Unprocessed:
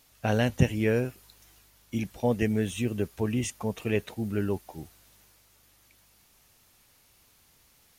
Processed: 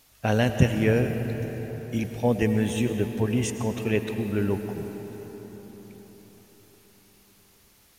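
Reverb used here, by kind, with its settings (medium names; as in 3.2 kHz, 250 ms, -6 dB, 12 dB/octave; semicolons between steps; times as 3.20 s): algorithmic reverb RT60 5 s, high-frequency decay 0.5×, pre-delay 65 ms, DRR 6.5 dB; trim +2.5 dB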